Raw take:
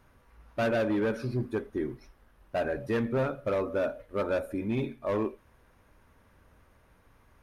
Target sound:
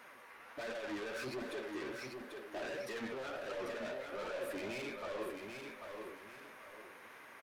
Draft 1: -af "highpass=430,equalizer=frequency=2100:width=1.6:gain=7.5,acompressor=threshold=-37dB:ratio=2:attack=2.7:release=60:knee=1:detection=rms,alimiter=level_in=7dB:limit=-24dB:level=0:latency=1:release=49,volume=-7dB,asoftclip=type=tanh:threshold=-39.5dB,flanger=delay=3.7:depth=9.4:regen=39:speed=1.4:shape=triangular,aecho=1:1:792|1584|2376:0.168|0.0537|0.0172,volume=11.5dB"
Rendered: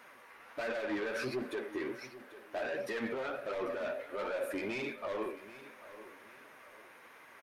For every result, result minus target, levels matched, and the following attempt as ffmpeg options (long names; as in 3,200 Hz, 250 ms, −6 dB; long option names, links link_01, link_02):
echo-to-direct −10 dB; soft clipping: distortion −6 dB
-af "highpass=430,equalizer=frequency=2100:width=1.6:gain=7.5,acompressor=threshold=-37dB:ratio=2:attack=2.7:release=60:knee=1:detection=rms,alimiter=level_in=7dB:limit=-24dB:level=0:latency=1:release=49,volume=-7dB,asoftclip=type=tanh:threshold=-39.5dB,flanger=delay=3.7:depth=9.4:regen=39:speed=1.4:shape=triangular,aecho=1:1:792|1584|2376|3168:0.531|0.17|0.0544|0.0174,volume=11.5dB"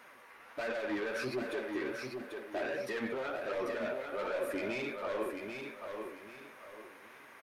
soft clipping: distortion −6 dB
-af "highpass=430,equalizer=frequency=2100:width=1.6:gain=7.5,acompressor=threshold=-37dB:ratio=2:attack=2.7:release=60:knee=1:detection=rms,alimiter=level_in=7dB:limit=-24dB:level=0:latency=1:release=49,volume=-7dB,asoftclip=type=tanh:threshold=-48dB,flanger=delay=3.7:depth=9.4:regen=39:speed=1.4:shape=triangular,aecho=1:1:792|1584|2376|3168:0.531|0.17|0.0544|0.0174,volume=11.5dB"